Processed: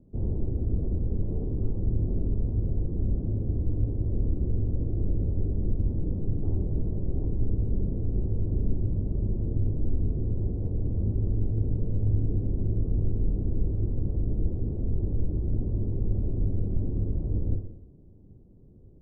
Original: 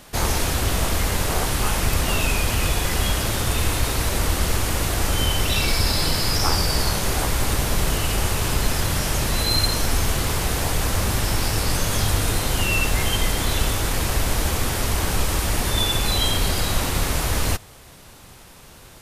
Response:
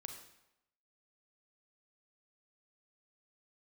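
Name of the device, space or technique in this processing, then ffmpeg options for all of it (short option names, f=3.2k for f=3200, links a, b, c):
next room: -filter_complex "[0:a]lowpass=f=380:w=0.5412,lowpass=f=380:w=1.3066[a];[1:a]atrim=start_sample=2205[b];[a][b]afir=irnorm=-1:irlink=0"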